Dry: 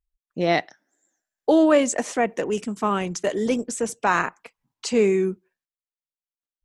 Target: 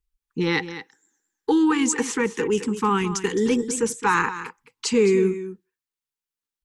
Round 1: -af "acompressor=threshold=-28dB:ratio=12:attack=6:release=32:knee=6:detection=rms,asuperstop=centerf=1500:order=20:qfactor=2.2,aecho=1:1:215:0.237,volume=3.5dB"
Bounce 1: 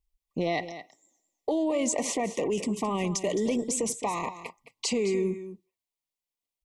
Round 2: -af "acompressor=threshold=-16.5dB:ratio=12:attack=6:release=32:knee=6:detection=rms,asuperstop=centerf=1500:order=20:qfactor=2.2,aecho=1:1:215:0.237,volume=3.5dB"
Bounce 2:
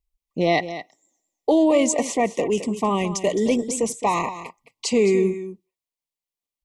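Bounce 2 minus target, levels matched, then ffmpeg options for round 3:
2000 Hz band -5.0 dB
-af "acompressor=threshold=-16.5dB:ratio=12:attack=6:release=32:knee=6:detection=rms,asuperstop=centerf=630:order=20:qfactor=2.2,aecho=1:1:215:0.237,volume=3.5dB"

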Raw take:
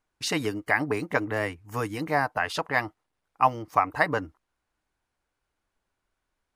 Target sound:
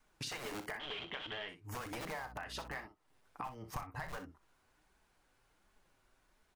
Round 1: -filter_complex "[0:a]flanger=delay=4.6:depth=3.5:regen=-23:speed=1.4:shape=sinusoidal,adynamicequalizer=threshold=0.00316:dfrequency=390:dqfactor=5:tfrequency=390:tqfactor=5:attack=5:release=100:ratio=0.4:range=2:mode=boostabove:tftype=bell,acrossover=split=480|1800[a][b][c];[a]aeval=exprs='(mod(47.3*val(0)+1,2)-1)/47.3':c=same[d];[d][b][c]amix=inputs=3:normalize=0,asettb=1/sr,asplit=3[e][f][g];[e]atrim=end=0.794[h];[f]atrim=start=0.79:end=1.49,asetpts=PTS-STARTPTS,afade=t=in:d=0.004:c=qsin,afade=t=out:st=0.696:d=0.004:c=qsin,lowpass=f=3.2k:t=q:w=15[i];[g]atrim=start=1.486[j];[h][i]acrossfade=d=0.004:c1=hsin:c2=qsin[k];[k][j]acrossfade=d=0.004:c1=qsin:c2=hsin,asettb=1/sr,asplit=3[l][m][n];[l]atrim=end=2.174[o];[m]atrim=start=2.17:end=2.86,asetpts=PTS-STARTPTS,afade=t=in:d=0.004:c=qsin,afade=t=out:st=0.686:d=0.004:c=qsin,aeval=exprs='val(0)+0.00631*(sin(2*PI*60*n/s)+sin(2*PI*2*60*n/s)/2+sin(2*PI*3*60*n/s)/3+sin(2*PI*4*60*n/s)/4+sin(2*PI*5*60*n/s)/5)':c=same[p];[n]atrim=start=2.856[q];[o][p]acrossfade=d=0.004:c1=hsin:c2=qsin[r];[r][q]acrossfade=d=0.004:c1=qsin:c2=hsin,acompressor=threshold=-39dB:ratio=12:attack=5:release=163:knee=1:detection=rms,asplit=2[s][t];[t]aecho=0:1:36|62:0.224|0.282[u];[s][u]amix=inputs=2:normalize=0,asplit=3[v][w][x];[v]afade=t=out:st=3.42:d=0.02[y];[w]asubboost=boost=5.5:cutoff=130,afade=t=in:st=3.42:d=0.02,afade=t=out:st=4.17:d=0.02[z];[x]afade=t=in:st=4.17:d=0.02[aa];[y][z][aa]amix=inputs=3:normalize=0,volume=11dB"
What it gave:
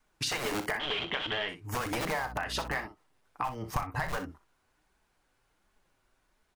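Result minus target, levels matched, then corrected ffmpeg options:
compressor: peak gain reduction -10.5 dB
-filter_complex "[0:a]flanger=delay=4.6:depth=3.5:regen=-23:speed=1.4:shape=sinusoidal,adynamicequalizer=threshold=0.00316:dfrequency=390:dqfactor=5:tfrequency=390:tqfactor=5:attack=5:release=100:ratio=0.4:range=2:mode=boostabove:tftype=bell,acrossover=split=480|1800[a][b][c];[a]aeval=exprs='(mod(47.3*val(0)+1,2)-1)/47.3':c=same[d];[d][b][c]amix=inputs=3:normalize=0,asettb=1/sr,asplit=3[e][f][g];[e]atrim=end=0.794[h];[f]atrim=start=0.79:end=1.49,asetpts=PTS-STARTPTS,afade=t=in:d=0.004:c=qsin,afade=t=out:st=0.696:d=0.004:c=qsin,lowpass=f=3.2k:t=q:w=15[i];[g]atrim=start=1.486[j];[h][i]acrossfade=d=0.004:c1=hsin:c2=qsin[k];[k][j]acrossfade=d=0.004:c1=qsin:c2=hsin,asettb=1/sr,asplit=3[l][m][n];[l]atrim=end=2.174[o];[m]atrim=start=2.17:end=2.86,asetpts=PTS-STARTPTS,afade=t=in:d=0.004:c=qsin,afade=t=out:st=0.686:d=0.004:c=qsin,aeval=exprs='val(0)+0.00631*(sin(2*PI*60*n/s)+sin(2*PI*2*60*n/s)/2+sin(2*PI*3*60*n/s)/3+sin(2*PI*4*60*n/s)/4+sin(2*PI*5*60*n/s)/5)':c=same[p];[n]atrim=start=2.856[q];[o][p]acrossfade=d=0.004:c1=hsin:c2=qsin[r];[r][q]acrossfade=d=0.004:c1=qsin:c2=hsin,acompressor=threshold=-50.5dB:ratio=12:attack=5:release=163:knee=1:detection=rms,asplit=2[s][t];[t]aecho=0:1:36|62:0.224|0.282[u];[s][u]amix=inputs=2:normalize=0,asplit=3[v][w][x];[v]afade=t=out:st=3.42:d=0.02[y];[w]asubboost=boost=5.5:cutoff=130,afade=t=in:st=3.42:d=0.02,afade=t=out:st=4.17:d=0.02[z];[x]afade=t=in:st=4.17:d=0.02[aa];[y][z][aa]amix=inputs=3:normalize=0,volume=11dB"

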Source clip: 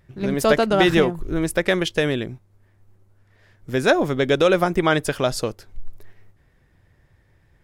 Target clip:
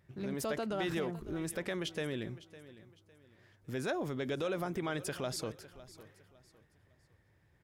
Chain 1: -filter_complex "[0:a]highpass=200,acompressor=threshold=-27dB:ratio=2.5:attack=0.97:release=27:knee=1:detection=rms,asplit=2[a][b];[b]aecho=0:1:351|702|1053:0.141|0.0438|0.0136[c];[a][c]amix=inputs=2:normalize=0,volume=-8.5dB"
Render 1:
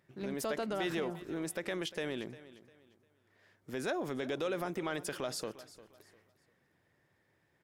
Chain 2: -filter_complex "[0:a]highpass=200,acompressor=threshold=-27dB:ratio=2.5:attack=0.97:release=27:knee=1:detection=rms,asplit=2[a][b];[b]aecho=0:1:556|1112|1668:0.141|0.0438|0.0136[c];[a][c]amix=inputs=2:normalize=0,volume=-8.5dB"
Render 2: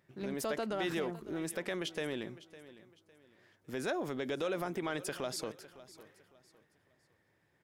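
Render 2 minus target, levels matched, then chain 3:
125 Hz band -5.0 dB
-filter_complex "[0:a]highpass=71,acompressor=threshold=-27dB:ratio=2.5:attack=0.97:release=27:knee=1:detection=rms,asplit=2[a][b];[b]aecho=0:1:556|1112|1668:0.141|0.0438|0.0136[c];[a][c]amix=inputs=2:normalize=0,volume=-8.5dB"

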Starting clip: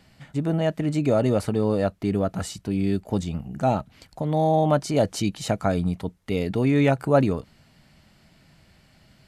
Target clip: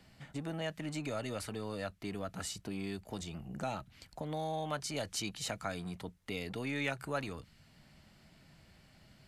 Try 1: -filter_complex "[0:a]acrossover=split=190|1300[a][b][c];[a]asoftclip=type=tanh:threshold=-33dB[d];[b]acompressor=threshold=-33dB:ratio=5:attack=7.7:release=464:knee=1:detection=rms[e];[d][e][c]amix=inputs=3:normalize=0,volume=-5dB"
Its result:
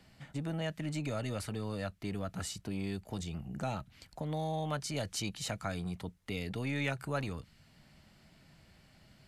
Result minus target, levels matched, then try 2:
soft clip: distortion -4 dB
-filter_complex "[0:a]acrossover=split=190|1300[a][b][c];[a]asoftclip=type=tanh:threshold=-41.5dB[d];[b]acompressor=threshold=-33dB:ratio=5:attack=7.7:release=464:knee=1:detection=rms[e];[d][e][c]amix=inputs=3:normalize=0,volume=-5dB"

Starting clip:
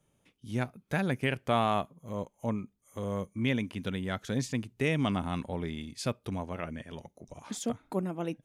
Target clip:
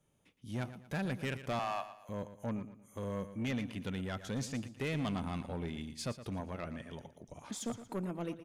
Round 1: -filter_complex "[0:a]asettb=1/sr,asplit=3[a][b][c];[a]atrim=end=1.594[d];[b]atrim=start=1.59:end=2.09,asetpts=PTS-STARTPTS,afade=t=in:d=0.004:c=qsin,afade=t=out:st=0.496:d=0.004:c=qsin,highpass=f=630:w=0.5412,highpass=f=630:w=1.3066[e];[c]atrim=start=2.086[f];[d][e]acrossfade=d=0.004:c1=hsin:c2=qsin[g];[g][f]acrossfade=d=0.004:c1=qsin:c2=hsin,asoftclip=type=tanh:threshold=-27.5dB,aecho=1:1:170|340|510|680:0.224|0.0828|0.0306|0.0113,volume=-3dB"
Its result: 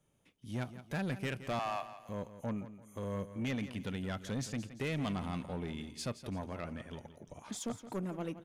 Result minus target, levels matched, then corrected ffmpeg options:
echo 54 ms late
-filter_complex "[0:a]asettb=1/sr,asplit=3[a][b][c];[a]atrim=end=1.594[d];[b]atrim=start=1.59:end=2.09,asetpts=PTS-STARTPTS,afade=t=in:d=0.004:c=qsin,afade=t=out:st=0.496:d=0.004:c=qsin,highpass=f=630:w=0.5412,highpass=f=630:w=1.3066[e];[c]atrim=start=2.086[f];[d][e]acrossfade=d=0.004:c1=hsin:c2=qsin[g];[g][f]acrossfade=d=0.004:c1=qsin:c2=hsin,asoftclip=type=tanh:threshold=-27.5dB,aecho=1:1:116|232|348|464:0.224|0.0828|0.0306|0.0113,volume=-3dB"

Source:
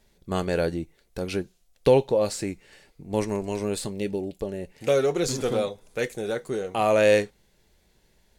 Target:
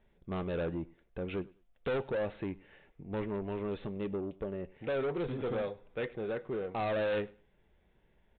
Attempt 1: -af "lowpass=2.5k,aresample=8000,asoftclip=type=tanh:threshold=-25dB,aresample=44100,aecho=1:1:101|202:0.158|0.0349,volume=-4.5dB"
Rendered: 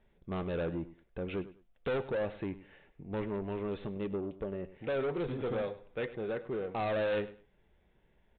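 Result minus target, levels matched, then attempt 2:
echo-to-direct +7 dB
-af "lowpass=2.5k,aresample=8000,asoftclip=type=tanh:threshold=-25dB,aresample=44100,aecho=1:1:101|202:0.0708|0.0156,volume=-4.5dB"

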